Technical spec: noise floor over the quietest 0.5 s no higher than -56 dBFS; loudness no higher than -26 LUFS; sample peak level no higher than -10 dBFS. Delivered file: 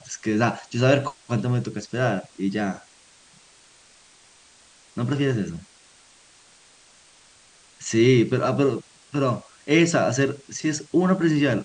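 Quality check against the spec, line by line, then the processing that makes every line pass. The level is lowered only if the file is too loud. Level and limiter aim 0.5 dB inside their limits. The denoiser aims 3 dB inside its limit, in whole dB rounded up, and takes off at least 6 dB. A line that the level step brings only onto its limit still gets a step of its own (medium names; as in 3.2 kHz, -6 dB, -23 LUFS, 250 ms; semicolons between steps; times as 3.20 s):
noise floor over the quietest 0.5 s -54 dBFS: fail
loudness -23.0 LUFS: fail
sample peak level -4.0 dBFS: fail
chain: trim -3.5 dB; peak limiter -10.5 dBFS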